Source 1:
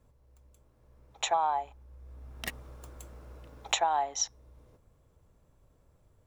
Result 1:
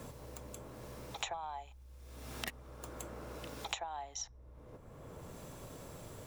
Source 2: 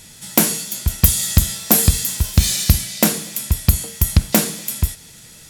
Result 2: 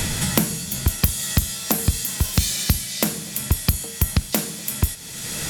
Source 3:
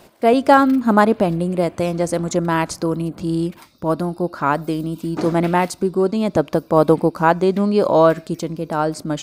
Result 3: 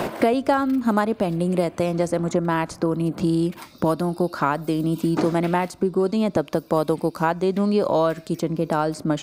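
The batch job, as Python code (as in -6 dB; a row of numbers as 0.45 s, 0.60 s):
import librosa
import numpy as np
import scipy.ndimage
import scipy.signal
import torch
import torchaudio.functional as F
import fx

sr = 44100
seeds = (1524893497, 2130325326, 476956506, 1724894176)

y = fx.band_squash(x, sr, depth_pct=100)
y = F.gain(torch.from_numpy(y), -5.0).numpy()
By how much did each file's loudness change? -14.5 LU, -5.0 LU, -4.0 LU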